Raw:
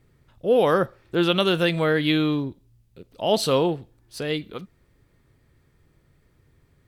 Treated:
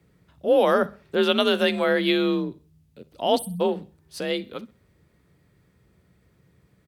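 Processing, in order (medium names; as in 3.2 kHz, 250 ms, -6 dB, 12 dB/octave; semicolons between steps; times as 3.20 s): spectral selection erased 3.38–3.61 s, 230–8200 Hz; frequency shift +41 Hz; hum notches 50/100/150/200 Hz; on a send: feedback delay 64 ms, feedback 36%, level -22 dB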